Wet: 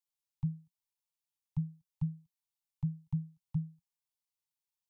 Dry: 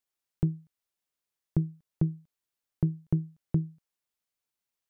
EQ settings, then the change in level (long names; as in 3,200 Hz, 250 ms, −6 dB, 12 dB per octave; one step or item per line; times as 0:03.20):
Chebyshev band-stop filter 180–840 Hz, order 4
phaser with its sweep stopped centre 310 Hz, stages 8
−4.0 dB